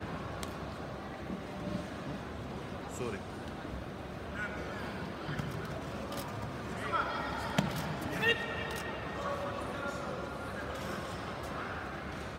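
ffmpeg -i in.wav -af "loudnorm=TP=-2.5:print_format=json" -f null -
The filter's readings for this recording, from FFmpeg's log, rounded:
"input_i" : "-38.1",
"input_tp" : "-12.1",
"input_lra" : "6.2",
"input_thresh" : "-48.1",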